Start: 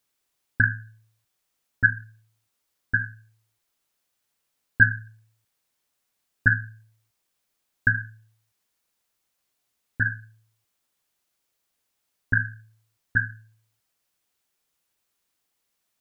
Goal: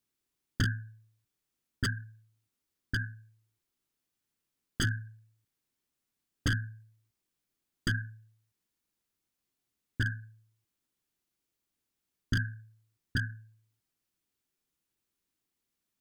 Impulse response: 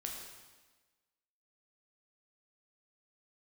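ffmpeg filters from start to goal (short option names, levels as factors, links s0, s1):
-af "aeval=exprs='0.15*(abs(mod(val(0)/0.15+3,4)-2)-1)':c=same,lowshelf=f=430:t=q:w=1.5:g=7,volume=0.376"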